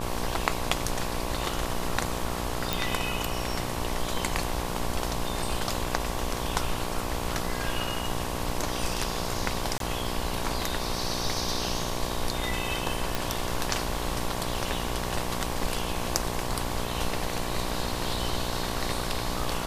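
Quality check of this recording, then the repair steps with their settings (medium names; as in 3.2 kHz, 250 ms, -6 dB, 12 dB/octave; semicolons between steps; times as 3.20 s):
buzz 60 Hz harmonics 19 -34 dBFS
2.73 s: pop
9.78–9.80 s: dropout 22 ms
13.15 s: pop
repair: de-click; de-hum 60 Hz, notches 19; interpolate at 9.78 s, 22 ms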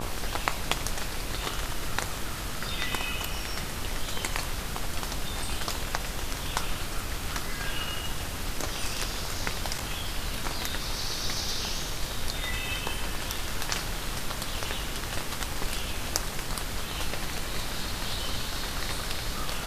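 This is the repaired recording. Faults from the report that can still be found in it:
nothing left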